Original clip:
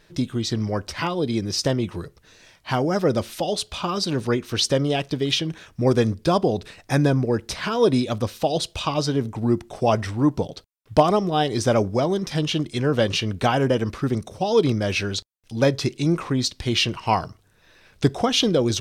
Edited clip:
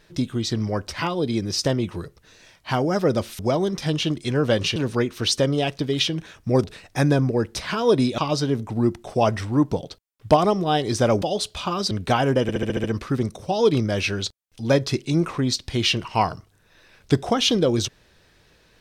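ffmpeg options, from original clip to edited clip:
-filter_complex "[0:a]asplit=13[s0][s1][s2][s3][s4][s5][s6][s7][s8][s9][s10][s11][s12];[s0]atrim=end=3.392[s13];[s1]atrim=start=11.878:end=13.252[s14];[s2]atrim=start=4.078:end=5.962[s15];[s3]atrim=start=6.578:end=8.122[s16];[s4]atrim=start=8.838:end=11.882[s17];[s5]atrim=start=3.388:end=4.082[s18];[s6]atrim=start=13.248:end=13.832[s19];[s7]atrim=start=13.758:end=13.832[s20];[s8]atrim=start=13.758:end=13.832[s21];[s9]atrim=start=13.758:end=13.832[s22];[s10]atrim=start=13.758:end=13.832[s23];[s11]atrim=start=13.758:end=13.832[s24];[s12]atrim=start=13.758[s25];[s13][s14]acrossfade=d=0.004:c1=hsin:c2=hsin[s26];[s26][s15]acrossfade=d=0.004:c1=hsin:c2=hsin[s27];[s27][s16]acrossfade=d=0.004:c1=hsin:c2=hsin[s28];[s28][s17]acrossfade=d=0.004:c1=hsin:c2=hsin[s29];[s29][s18]acrossfade=d=0.004:c1=hsin:c2=hsin[s30];[s30][s19]acrossfade=d=0.004:c1=hsin:c2=hsin[s31];[s31][s20]acrossfade=d=0.004:c1=hsin:c2=hsin[s32];[s32][s21]acrossfade=d=0.004:c1=hsin:c2=hsin[s33];[s33][s22]acrossfade=d=0.004:c1=hsin:c2=hsin[s34];[s34][s23]acrossfade=d=0.004:c1=hsin:c2=hsin[s35];[s35][s24]acrossfade=d=0.004:c1=hsin:c2=hsin[s36];[s36][s25]acrossfade=d=0.004:c1=hsin:c2=hsin"

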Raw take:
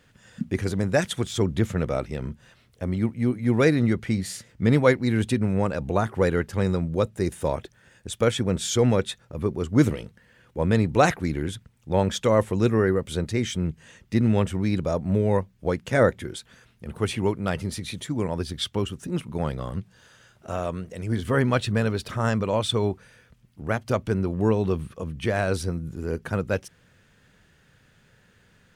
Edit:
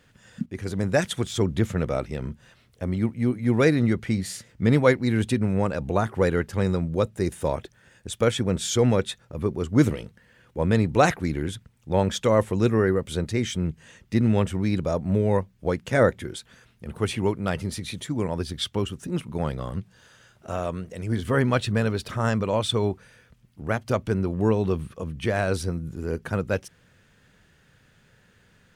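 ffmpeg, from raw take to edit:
-filter_complex "[0:a]asplit=2[s0][s1];[s0]atrim=end=0.46,asetpts=PTS-STARTPTS,afade=t=out:st=0.456:d=0.004:c=hsin:silence=0.211349[s2];[s1]atrim=start=0.46,asetpts=PTS-STARTPTS,afade=t=in:d=0.4:silence=0.211349[s3];[s2][s3]concat=n=2:v=0:a=1"

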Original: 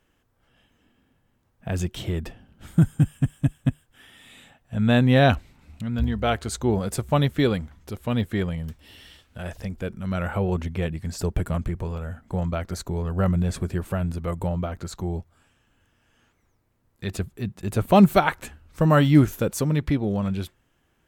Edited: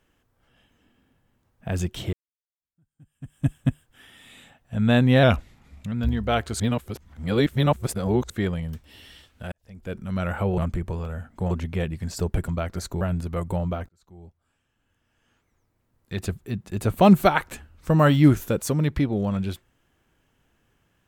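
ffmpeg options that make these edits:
-filter_complex "[0:a]asplit=12[s0][s1][s2][s3][s4][s5][s6][s7][s8][s9][s10][s11];[s0]atrim=end=2.13,asetpts=PTS-STARTPTS,afade=t=out:st=2.126:d=0.004:c=hsin[s12];[s1]atrim=start=2.13:end=5.234,asetpts=PTS-STARTPTS,afade=t=in:d=1.34:c=exp[s13];[s2]atrim=start=5.23:end=5.87,asetpts=PTS-STARTPTS,asetrate=41013,aresample=44100,atrim=end_sample=30348,asetpts=PTS-STARTPTS[s14];[s3]atrim=start=5.866:end=6.552[s15];[s4]atrim=start=6.548:end=8.252,asetpts=PTS-STARTPTS,areverse[s16];[s5]atrim=start=8.248:end=9.47,asetpts=PTS-STARTPTS,afade=t=out:st=1.218:d=0.004:c=hsin[s17];[s6]atrim=start=9.47:end=10.532,asetpts=PTS-STARTPTS,afade=t=in:d=0.44:c=qua[s18];[s7]atrim=start=11.498:end=12.432[s19];[s8]atrim=start=10.528:end=11.502[s20];[s9]atrim=start=12.428:end=12.962[s21];[s10]atrim=start=13.918:end=14.8,asetpts=PTS-STARTPTS,afade=t=out:st=0.878:d=0.004:c=hsin[s22];[s11]atrim=start=14.8,asetpts=PTS-STARTPTS,afade=t=in:d=2.31[s23];[s12][s13]concat=n=2:v=0:a=1[s24];[s24][s14]acrossfade=d=0.004:c1=hsin:c2=hsin[s25];[s25][s15]acrossfade=d=0.004:c1=hsin:c2=hsin[s26];[s26][s16]acrossfade=d=0.004:c1=hsin:c2=hsin[s27];[s17][s18]concat=n=2:v=0:a=1[s28];[s27][s28]acrossfade=d=0.004:c1=hsin:c2=hsin[s29];[s29][s19]acrossfade=d=0.004:c1=hsin:c2=hsin[s30];[s30][s20]acrossfade=d=0.004:c1=hsin:c2=hsin[s31];[s31][s21]acrossfade=d=0.004:c1=hsin:c2=hsin[s32];[s22][s23]concat=n=2:v=0:a=1[s33];[s32][s33]acrossfade=d=0.004:c1=hsin:c2=hsin"

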